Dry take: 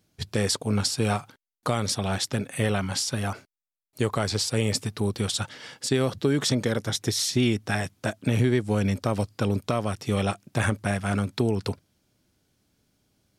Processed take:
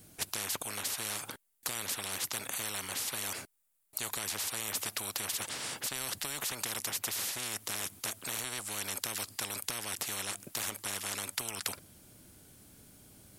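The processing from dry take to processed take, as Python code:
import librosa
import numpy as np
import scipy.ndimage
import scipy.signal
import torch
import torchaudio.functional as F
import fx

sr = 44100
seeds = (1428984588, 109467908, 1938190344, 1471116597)

y = fx.high_shelf_res(x, sr, hz=7100.0, db=7.5, q=1.5)
y = fx.spectral_comp(y, sr, ratio=10.0)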